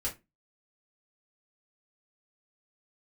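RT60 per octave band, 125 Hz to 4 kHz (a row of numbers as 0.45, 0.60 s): 0.30, 0.35, 0.25, 0.20, 0.20, 0.15 s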